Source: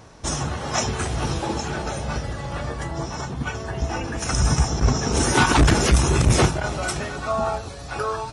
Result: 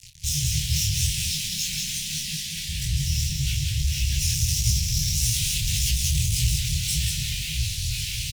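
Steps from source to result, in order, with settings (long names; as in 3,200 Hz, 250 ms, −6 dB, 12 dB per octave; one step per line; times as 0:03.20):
0:01.09–0:02.69: Butterworth high-pass 160 Hz 96 dB per octave
fuzz pedal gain 37 dB, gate −40 dBFS
brickwall limiter −18 dBFS, peak gain reduction 7.5 dB
inverse Chebyshev band-stop filter 290–1,300 Hz, stop band 50 dB
parametric band 400 Hz +12 dB 0.35 octaves
double-tracking delay 26 ms −8 dB
single-tap delay 186 ms −4 dB
micro pitch shift up and down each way 59 cents
level +2.5 dB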